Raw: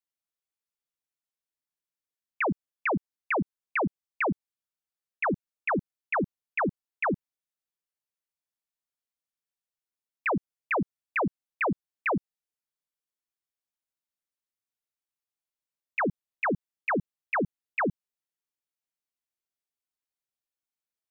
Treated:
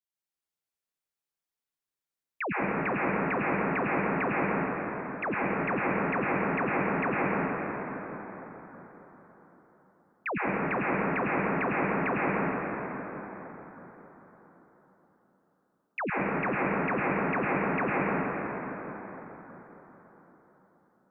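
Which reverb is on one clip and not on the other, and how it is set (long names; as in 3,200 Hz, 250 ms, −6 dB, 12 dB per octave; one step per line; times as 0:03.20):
dense smooth reverb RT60 4.5 s, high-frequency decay 0.45×, pre-delay 85 ms, DRR −7.5 dB
level −6 dB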